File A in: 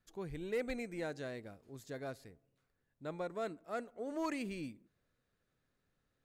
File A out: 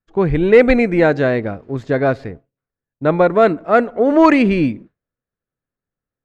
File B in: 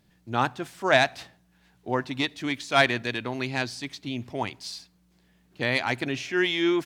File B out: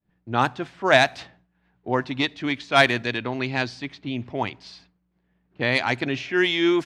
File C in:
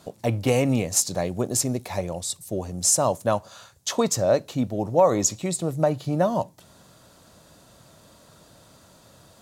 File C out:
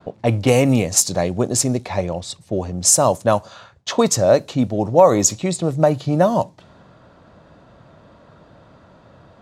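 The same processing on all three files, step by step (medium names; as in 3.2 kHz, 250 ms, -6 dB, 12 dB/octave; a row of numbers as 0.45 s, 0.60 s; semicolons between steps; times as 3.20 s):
level-controlled noise filter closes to 1.9 kHz, open at -17.5 dBFS; expander -56 dBFS; peak normalisation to -1.5 dBFS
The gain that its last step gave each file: +27.5 dB, +3.5 dB, +6.5 dB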